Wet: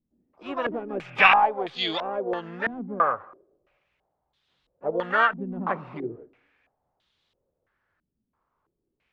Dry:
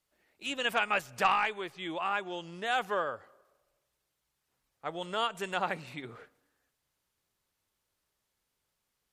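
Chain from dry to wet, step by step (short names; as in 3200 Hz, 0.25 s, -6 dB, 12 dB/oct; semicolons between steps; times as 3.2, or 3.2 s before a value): harmoniser +5 st -7 dB, +12 st -13 dB; stepped low-pass 3 Hz 240–3600 Hz; gain +5 dB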